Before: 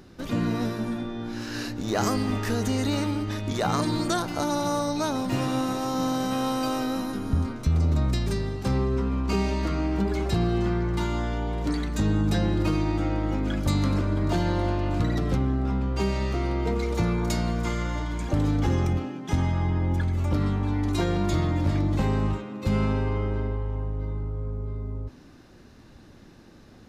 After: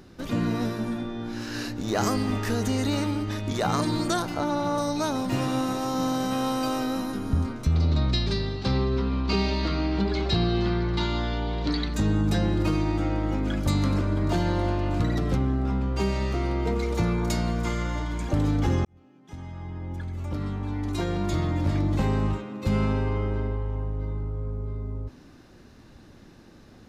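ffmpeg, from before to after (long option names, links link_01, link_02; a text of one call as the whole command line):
ffmpeg -i in.wav -filter_complex "[0:a]asettb=1/sr,asplit=3[link_01][link_02][link_03];[link_01]atrim=end=4.344[link_04];[link_02]atrim=start=4.34:end=4.78,asetpts=PTS-STARTPTS,afade=type=in:duration=0.004:curve=qsin,afade=type=out:start_time=0.436:duration=0.004:curve=qsin,acrossover=split=3800[link_05][link_06];[link_06]acompressor=threshold=-51dB:ratio=4:attack=1:release=60[link_07];[link_05][link_07]amix=inputs=2:normalize=0[link_08];[link_03]atrim=start=4.776[link_09];[link_04][link_08]acrossfade=duration=0.004:curve1=hsin:curve2=qsin[link_10];[link_10][link_09]acrossfade=duration=0.004:curve1=qsin:curve2=hsin,asettb=1/sr,asplit=3[link_11][link_12][link_13];[link_11]atrim=end=7.754[link_14];[link_12]atrim=start=7.75:end=11.94,asetpts=PTS-STARTPTS,afade=type=in:duration=0.004:curve=qsin,afade=type=out:start_time=4.186:duration=0.004:curve=qsin,lowpass=frequency=4200:width_type=q:width=3.3[link_15];[link_13]atrim=start=11.936[link_16];[link_14][link_15]acrossfade=duration=0.004:curve1=hsin:curve2=qsin[link_17];[link_17][link_16]acrossfade=duration=0.004:curve1=qsin:curve2=hsin,asplit=2[link_18][link_19];[link_18]atrim=end=18.85,asetpts=PTS-STARTPTS,afade=type=out:start_time=18.846:duration=0.004:curve=hsin[link_20];[link_19]atrim=start=18.85,asetpts=PTS-STARTPTS,afade=type=in:duration=3.07[link_21];[link_20][link_21]concat=n=2:v=0:a=1" out.wav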